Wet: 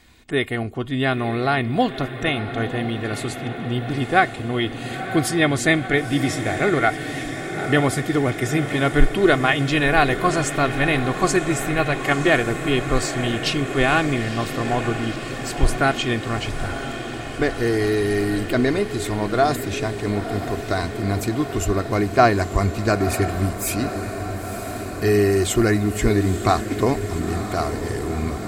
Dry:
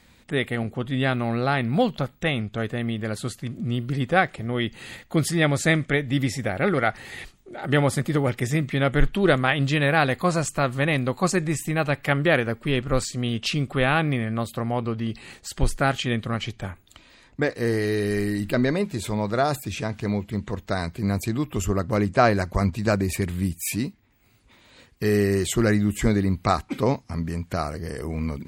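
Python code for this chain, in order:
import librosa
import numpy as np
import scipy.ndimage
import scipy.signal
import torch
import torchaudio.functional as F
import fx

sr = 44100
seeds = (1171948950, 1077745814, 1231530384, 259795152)

y = x + 0.49 * np.pad(x, (int(2.8 * sr / 1000.0), 0))[:len(x)]
y = fx.echo_diffused(y, sr, ms=957, feedback_pct=76, wet_db=-10.5)
y = y * 10.0 ** (2.0 / 20.0)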